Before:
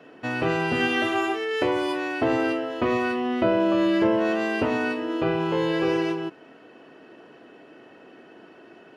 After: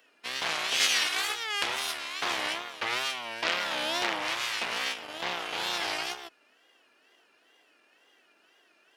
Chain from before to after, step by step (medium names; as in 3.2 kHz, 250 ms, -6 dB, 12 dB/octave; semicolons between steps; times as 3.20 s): Chebyshev shaper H 3 -15 dB, 6 -8 dB, 8 -21 dB, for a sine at -9 dBFS; wow and flutter 140 cents; differentiator; trim +8.5 dB